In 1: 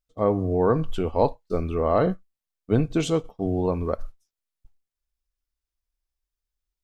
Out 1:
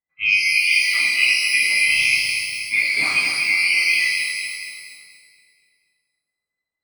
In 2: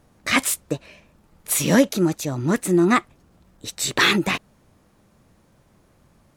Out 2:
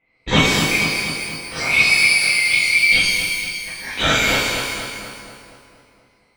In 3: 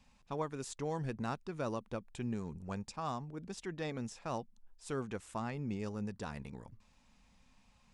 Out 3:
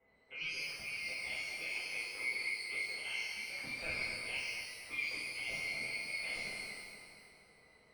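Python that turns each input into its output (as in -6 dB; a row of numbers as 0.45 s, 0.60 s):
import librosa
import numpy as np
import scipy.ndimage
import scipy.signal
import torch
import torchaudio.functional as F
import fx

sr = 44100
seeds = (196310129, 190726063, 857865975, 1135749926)

p1 = fx.band_swap(x, sr, width_hz=2000)
p2 = fx.rider(p1, sr, range_db=4, speed_s=0.5)
p3 = fx.air_absorb(p2, sr, metres=130.0)
p4 = p3 + fx.echo_feedback(p3, sr, ms=238, feedback_pct=59, wet_db=-7, dry=0)
p5 = fx.env_lowpass(p4, sr, base_hz=950.0, full_db=-23.0)
p6 = fx.rev_shimmer(p5, sr, seeds[0], rt60_s=1.1, semitones=12, shimmer_db=-8, drr_db=-8.0)
y = p6 * librosa.db_to_amplitude(-3.0)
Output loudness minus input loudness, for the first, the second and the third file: +8.5 LU, +4.5 LU, +2.5 LU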